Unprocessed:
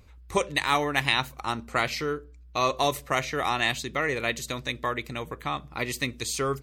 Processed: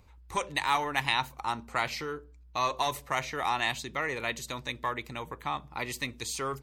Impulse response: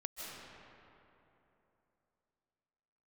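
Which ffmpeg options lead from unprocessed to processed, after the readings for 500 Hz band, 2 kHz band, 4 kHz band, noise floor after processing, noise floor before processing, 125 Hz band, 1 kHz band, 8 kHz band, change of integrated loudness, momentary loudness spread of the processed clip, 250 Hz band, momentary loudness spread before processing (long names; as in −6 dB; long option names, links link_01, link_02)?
−7.5 dB, −4.5 dB, −4.5 dB, −54 dBFS, −50 dBFS, −7.0 dB, −2.0 dB, −4.5 dB, −4.0 dB, 9 LU, −7.5 dB, 9 LU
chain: -filter_complex "[0:a]equalizer=frequency=900:width_type=o:width=0.4:gain=9,acrossover=split=880|2900[link_01][link_02][link_03];[link_01]asoftclip=type=tanh:threshold=-28dB[link_04];[link_04][link_02][link_03]amix=inputs=3:normalize=0,volume=-4.5dB"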